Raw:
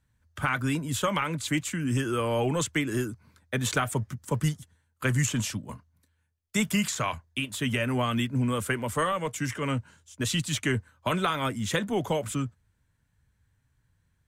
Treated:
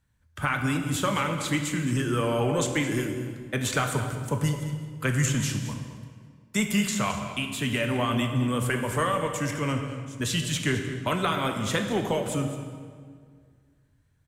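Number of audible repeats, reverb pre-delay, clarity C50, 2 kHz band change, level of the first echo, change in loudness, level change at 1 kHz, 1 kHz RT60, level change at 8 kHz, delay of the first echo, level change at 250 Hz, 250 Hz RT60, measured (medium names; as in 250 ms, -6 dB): 1, 16 ms, 5.5 dB, +1.5 dB, -13.0 dB, +1.5 dB, +1.5 dB, 1.8 s, +1.0 dB, 215 ms, +2.0 dB, 2.2 s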